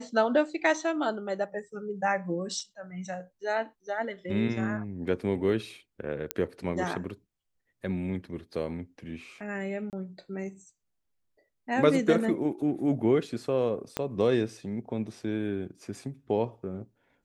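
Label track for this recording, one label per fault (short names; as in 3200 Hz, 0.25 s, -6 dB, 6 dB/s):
2.600000	2.600000	gap 2.4 ms
6.310000	6.310000	pop -10 dBFS
9.900000	9.930000	gap 28 ms
13.970000	13.970000	pop -14 dBFS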